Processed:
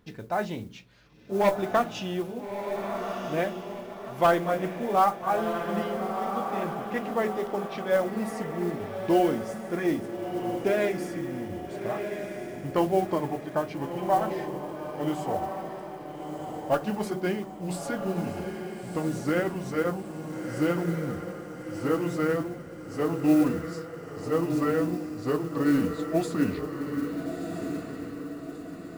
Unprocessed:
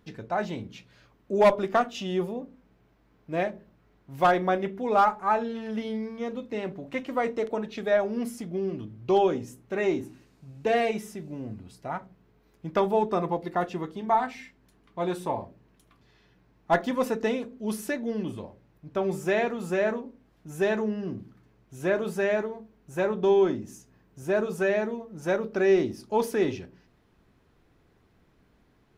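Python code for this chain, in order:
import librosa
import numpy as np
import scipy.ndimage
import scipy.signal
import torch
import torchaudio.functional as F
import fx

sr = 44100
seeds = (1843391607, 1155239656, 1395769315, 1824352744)

y = fx.pitch_glide(x, sr, semitones=-5.5, runs='starting unshifted')
y = fx.echo_diffused(y, sr, ms=1331, feedback_pct=46, wet_db=-6.0)
y = fx.mod_noise(y, sr, seeds[0], snr_db=26)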